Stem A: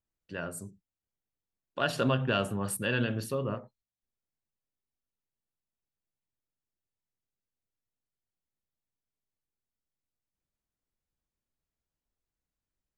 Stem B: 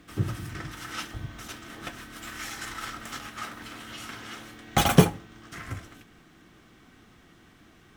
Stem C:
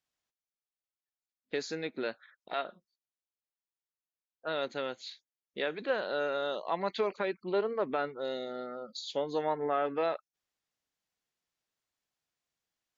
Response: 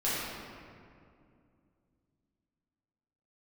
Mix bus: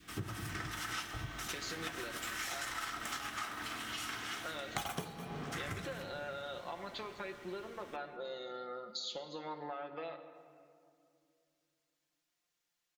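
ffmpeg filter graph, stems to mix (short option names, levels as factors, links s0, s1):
-filter_complex "[1:a]adynamicequalizer=threshold=0.00708:dfrequency=780:dqfactor=0.81:tfrequency=780:tqfactor=0.81:attack=5:release=100:ratio=0.375:range=2.5:mode=boostabove:tftype=bell,bandreject=f=540:w=12,volume=0.75,asplit=3[s0][s1][s2];[s1]volume=0.0944[s3];[s2]volume=0.112[s4];[2:a]aecho=1:1:5.7:0.65,acompressor=threshold=0.0112:ratio=6,volume=0.794,asplit=2[s5][s6];[s6]volume=0.158[s7];[3:a]atrim=start_sample=2205[s8];[s3][s7]amix=inputs=2:normalize=0[s9];[s9][s8]afir=irnorm=-1:irlink=0[s10];[s4]aecho=0:1:204:1[s11];[s0][s5][s10][s11]amix=inputs=4:normalize=0,tiltshelf=f=970:g=-3.5,acompressor=threshold=0.0158:ratio=20"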